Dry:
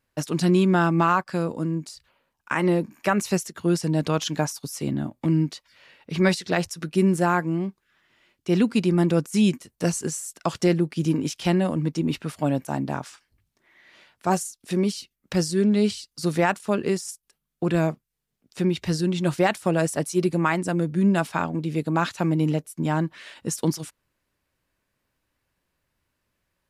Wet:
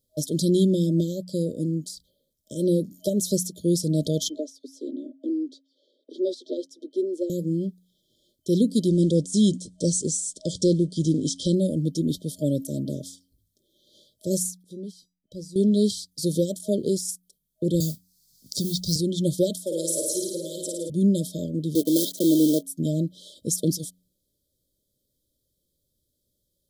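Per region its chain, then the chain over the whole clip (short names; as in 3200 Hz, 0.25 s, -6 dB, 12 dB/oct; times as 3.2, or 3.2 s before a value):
4.29–7.3 rippled Chebyshev high-pass 250 Hz, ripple 3 dB + tape spacing loss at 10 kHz 24 dB
8.88–11.55 G.711 law mismatch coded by mu + steep low-pass 9200 Hz 48 dB/oct
14.63–15.56 high shelf 3200 Hz -10 dB + resonator 980 Hz, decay 0.22 s, mix 80%
17.8–18.96 EQ curve 160 Hz 0 dB, 460 Hz -12 dB, 3000 Hz -8 dB, 4600 Hz +14 dB, 10000 Hz +4 dB + modulation noise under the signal 21 dB + three-band squash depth 70%
19.61–20.9 HPF 520 Hz + flutter echo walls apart 9.4 m, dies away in 1 s
21.75–22.64 block floating point 3-bit + resonant high-pass 310 Hz, resonance Q 2.1
whole clip: de-hum 90.76 Hz, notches 3; FFT band-reject 630–3100 Hz; high shelf 7800 Hz +9 dB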